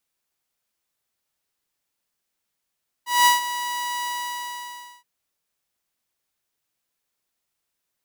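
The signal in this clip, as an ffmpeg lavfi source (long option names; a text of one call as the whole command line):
ffmpeg -f lavfi -i "aevalsrc='0.335*(2*mod(973*t,1)-1)':duration=1.974:sample_rate=44100,afade=type=in:duration=0.198,afade=type=out:start_time=0.198:duration=0.144:silence=0.211,afade=type=out:start_time=0.99:duration=0.984" out.wav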